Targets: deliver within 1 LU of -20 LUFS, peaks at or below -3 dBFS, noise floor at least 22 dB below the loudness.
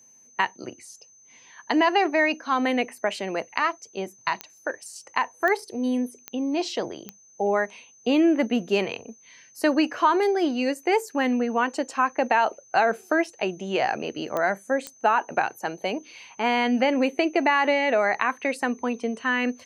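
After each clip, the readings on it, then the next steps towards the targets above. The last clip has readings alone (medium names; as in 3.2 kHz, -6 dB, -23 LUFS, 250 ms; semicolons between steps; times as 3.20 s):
clicks found 6; steady tone 6.2 kHz; tone level -52 dBFS; loudness -24.5 LUFS; peak level -6.0 dBFS; loudness target -20.0 LUFS
-> de-click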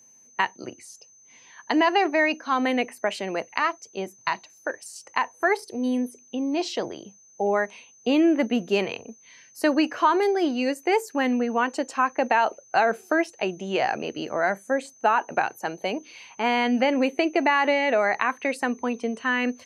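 clicks found 0; steady tone 6.2 kHz; tone level -52 dBFS
-> band-stop 6.2 kHz, Q 30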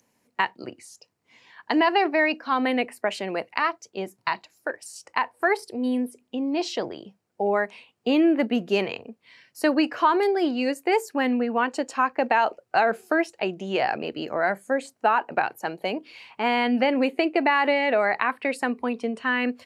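steady tone not found; loudness -24.5 LUFS; peak level -6.0 dBFS; loudness target -20.0 LUFS
-> trim +4.5 dB; peak limiter -3 dBFS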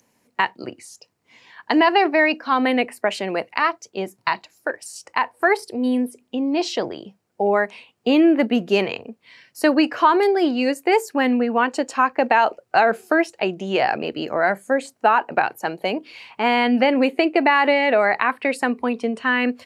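loudness -20.0 LUFS; peak level -3.0 dBFS; noise floor -68 dBFS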